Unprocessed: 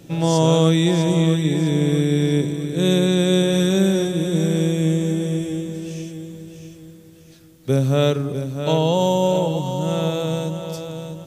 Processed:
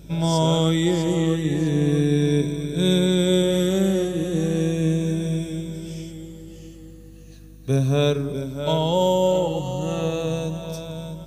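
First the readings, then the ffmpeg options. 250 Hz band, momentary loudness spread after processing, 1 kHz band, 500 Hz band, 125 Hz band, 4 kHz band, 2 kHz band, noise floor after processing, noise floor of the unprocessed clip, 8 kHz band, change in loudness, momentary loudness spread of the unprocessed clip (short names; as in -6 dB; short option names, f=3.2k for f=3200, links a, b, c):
-2.5 dB, 14 LU, -2.0 dB, -2.0 dB, -2.5 dB, -2.0 dB, -3.0 dB, -43 dBFS, -46 dBFS, -3.0 dB, -2.5 dB, 13 LU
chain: -af "afftfilt=real='re*pow(10,9/40*sin(2*PI*(1.6*log(max(b,1)*sr/1024/100)/log(2)-(-0.36)*(pts-256)/sr)))':imag='im*pow(10,9/40*sin(2*PI*(1.6*log(max(b,1)*sr/1024/100)/log(2)-(-0.36)*(pts-256)/sr)))':win_size=1024:overlap=0.75,bandreject=f=99.61:t=h:w=4,bandreject=f=199.22:t=h:w=4,bandreject=f=298.83:t=h:w=4,bandreject=f=398.44:t=h:w=4,bandreject=f=498.05:t=h:w=4,bandreject=f=597.66:t=h:w=4,bandreject=f=697.27:t=h:w=4,bandreject=f=796.88:t=h:w=4,bandreject=f=896.49:t=h:w=4,bandreject=f=996.1:t=h:w=4,bandreject=f=1.09571k:t=h:w=4,bandreject=f=1.19532k:t=h:w=4,bandreject=f=1.29493k:t=h:w=4,bandreject=f=1.39454k:t=h:w=4,bandreject=f=1.49415k:t=h:w=4,bandreject=f=1.59376k:t=h:w=4,bandreject=f=1.69337k:t=h:w=4,bandreject=f=1.79298k:t=h:w=4,bandreject=f=1.89259k:t=h:w=4,bandreject=f=1.9922k:t=h:w=4,bandreject=f=2.09181k:t=h:w=4,bandreject=f=2.19142k:t=h:w=4,bandreject=f=2.29103k:t=h:w=4,bandreject=f=2.39064k:t=h:w=4,bandreject=f=2.49025k:t=h:w=4,bandreject=f=2.58986k:t=h:w=4,bandreject=f=2.68947k:t=h:w=4,aeval=exprs='val(0)+0.01*(sin(2*PI*50*n/s)+sin(2*PI*2*50*n/s)/2+sin(2*PI*3*50*n/s)/3+sin(2*PI*4*50*n/s)/4+sin(2*PI*5*50*n/s)/5)':c=same,volume=-3.5dB"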